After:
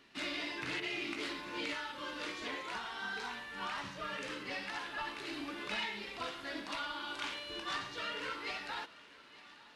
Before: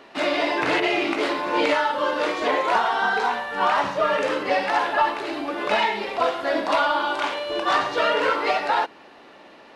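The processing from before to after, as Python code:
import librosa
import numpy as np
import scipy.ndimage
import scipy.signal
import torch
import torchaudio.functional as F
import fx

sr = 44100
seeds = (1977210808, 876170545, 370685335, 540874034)

p1 = fx.rider(x, sr, range_db=10, speed_s=0.5)
p2 = fx.tone_stack(p1, sr, knobs='6-0-2')
p3 = p2 + fx.echo_thinned(p2, sr, ms=886, feedback_pct=79, hz=330.0, wet_db=-20.0, dry=0)
y = p3 * 10.0 ** (5.0 / 20.0)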